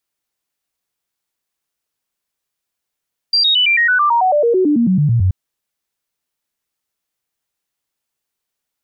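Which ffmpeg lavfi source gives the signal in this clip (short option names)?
-f lavfi -i "aevalsrc='0.316*clip(min(mod(t,0.11),0.11-mod(t,0.11))/0.005,0,1)*sin(2*PI*4730*pow(2,-floor(t/0.11)/3)*mod(t,0.11))':d=1.98:s=44100"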